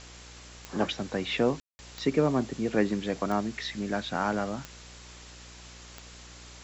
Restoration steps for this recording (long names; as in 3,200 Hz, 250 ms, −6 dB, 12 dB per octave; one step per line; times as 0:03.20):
click removal
hum removal 60 Hz, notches 10
ambience match 0:01.60–0:01.79
broadband denoise 26 dB, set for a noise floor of −48 dBFS